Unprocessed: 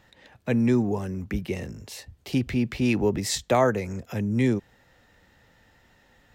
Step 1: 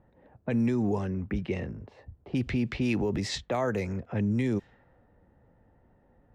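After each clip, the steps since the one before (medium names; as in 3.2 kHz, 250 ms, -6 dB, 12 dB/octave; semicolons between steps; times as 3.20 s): treble shelf 8.3 kHz -4.5 dB; level-controlled noise filter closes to 690 Hz, open at -19.5 dBFS; peak limiter -19.5 dBFS, peak gain reduction 9.5 dB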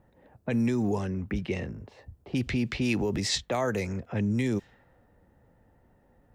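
treble shelf 3.5 kHz +9.5 dB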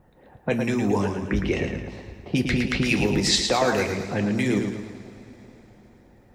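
two-slope reverb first 0.33 s, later 4 s, from -18 dB, DRR 5 dB; harmonic-percussive split percussive +8 dB; modulated delay 111 ms, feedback 45%, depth 54 cents, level -6 dB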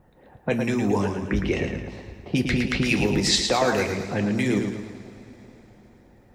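no audible change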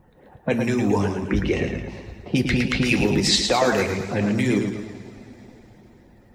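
coarse spectral quantiser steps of 15 dB; trim +2.5 dB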